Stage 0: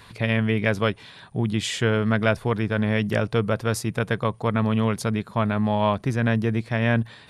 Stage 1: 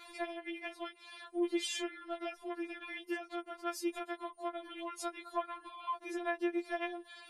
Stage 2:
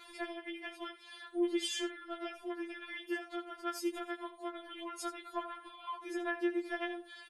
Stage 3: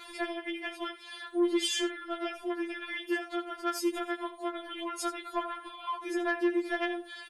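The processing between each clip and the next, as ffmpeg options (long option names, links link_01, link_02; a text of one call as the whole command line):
ffmpeg -i in.wav -af "lowshelf=frequency=320:width_type=q:width=3:gain=-9,acompressor=threshold=-29dB:ratio=6,afftfilt=real='re*4*eq(mod(b,16),0)':imag='im*4*eq(mod(b,16),0)':win_size=2048:overlap=0.75,volume=-2.5dB" out.wav
ffmpeg -i in.wav -af "aecho=1:1:11|80:0.501|0.224,volume=-1dB" out.wav
ffmpeg -i in.wav -af "asoftclip=type=tanh:threshold=-26dB,volume=7dB" out.wav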